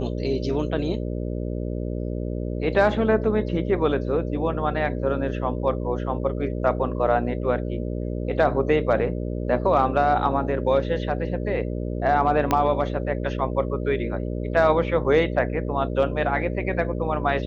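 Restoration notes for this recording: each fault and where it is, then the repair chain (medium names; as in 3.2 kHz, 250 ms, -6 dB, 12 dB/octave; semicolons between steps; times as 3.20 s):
buzz 60 Hz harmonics 10 -28 dBFS
12.51 s: pop -7 dBFS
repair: de-click; de-hum 60 Hz, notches 10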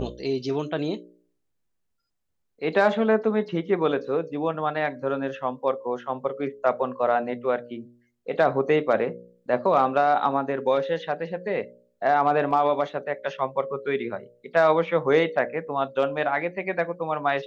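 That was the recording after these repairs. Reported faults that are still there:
12.51 s: pop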